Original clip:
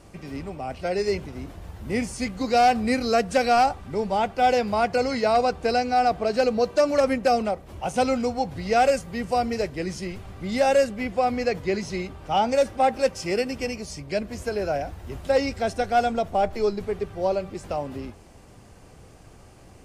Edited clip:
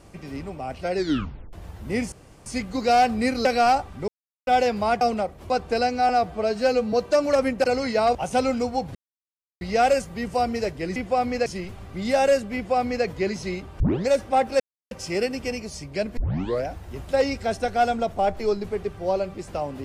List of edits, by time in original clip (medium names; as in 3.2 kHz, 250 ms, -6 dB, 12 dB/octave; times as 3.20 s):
0.96 s: tape stop 0.57 s
2.12 s: insert room tone 0.34 s
3.11–3.36 s: delete
3.99–4.38 s: mute
4.92–5.43 s: swap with 7.29–7.78 s
6.02–6.58 s: stretch 1.5×
8.58 s: insert silence 0.66 s
11.02–11.52 s: copy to 9.93 s
12.27 s: tape start 0.28 s
13.07 s: insert silence 0.31 s
14.33 s: tape start 0.48 s